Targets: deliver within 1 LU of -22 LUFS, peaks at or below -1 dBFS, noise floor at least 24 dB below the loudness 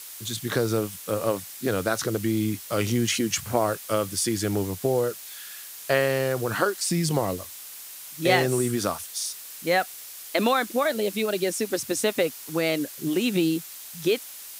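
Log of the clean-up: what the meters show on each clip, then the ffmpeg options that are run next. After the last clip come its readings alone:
noise floor -41 dBFS; noise floor target -50 dBFS; loudness -25.5 LUFS; peak -6.5 dBFS; loudness target -22.0 LUFS
-> -af "afftdn=nr=9:nf=-41"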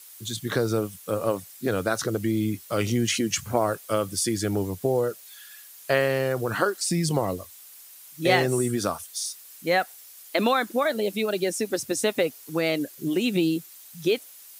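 noise floor -47 dBFS; noise floor target -50 dBFS
-> -af "afftdn=nr=6:nf=-47"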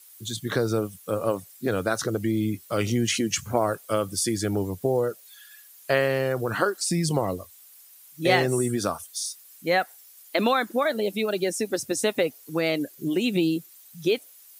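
noise floor -51 dBFS; loudness -26.0 LUFS; peak -7.0 dBFS; loudness target -22.0 LUFS
-> -af "volume=4dB"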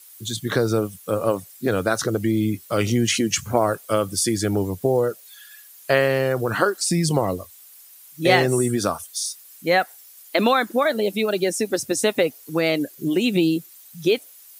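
loudness -22.0 LUFS; peak -3.0 dBFS; noise floor -47 dBFS

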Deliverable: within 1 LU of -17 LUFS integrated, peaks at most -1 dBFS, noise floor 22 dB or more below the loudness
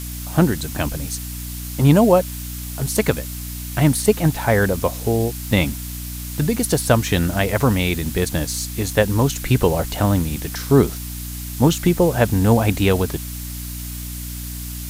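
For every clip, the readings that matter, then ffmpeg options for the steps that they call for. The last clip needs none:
hum 60 Hz; harmonics up to 300 Hz; hum level -29 dBFS; noise floor -30 dBFS; noise floor target -42 dBFS; loudness -20.0 LUFS; peak -1.0 dBFS; loudness target -17.0 LUFS
-> -af "bandreject=f=60:t=h:w=4,bandreject=f=120:t=h:w=4,bandreject=f=180:t=h:w=4,bandreject=f=240:t=h:w=4,bandreject=f=300:t=h:w=4"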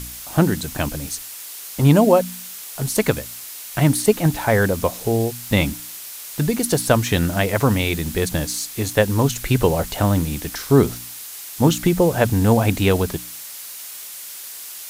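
hum none; noise floor -35 dBFS; noise floor target -42 dBFS
-> -af "afftdn=nr=7:nf=-35"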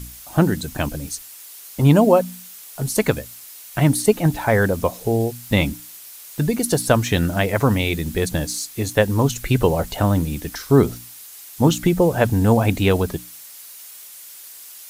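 noise floor -40 dBFS; noise floor target -42 dBFS
-> -af "afftdn=nr=6:nf=-40"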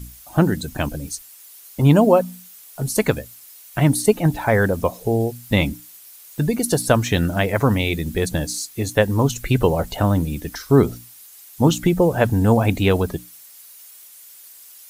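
noise floor -44 dBFS; loudness -19.5 LUFS; peak -1.5 dBFS; loudness target -17.0 LUFS
-> -af "volume=2.5dB,alimiter=limit=-1dB:level=0:latency=1"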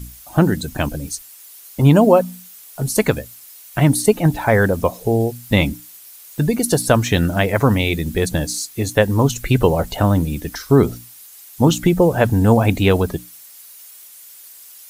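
loudness -17.5 LUFS; peak -1.0 dBFS; noise floor -42 dBFS

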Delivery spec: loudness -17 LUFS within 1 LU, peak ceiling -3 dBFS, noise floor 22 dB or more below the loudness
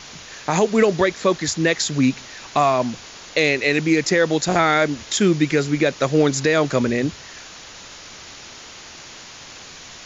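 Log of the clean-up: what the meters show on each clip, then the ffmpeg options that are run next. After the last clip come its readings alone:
noise floor -40 dBFS; noise floor target -41 dBFS; loudness -19.0 LUFS; peak -5.5 dBFS; loudness target -17.0 LUFS
-> -af "afftdn=nr=6:nf=-40"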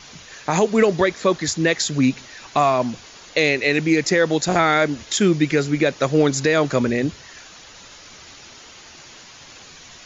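noise floor -44 dBFS; loudness -19.0 LUFS; peak -6.0 dBFS; loudness target -17.0 LUFS
-> -af "volume=2dB"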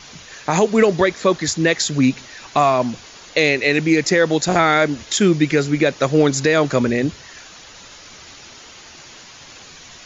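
loudness -17.0 LUFS; peak -4.0 dBFS; noise floor -42 dBFS

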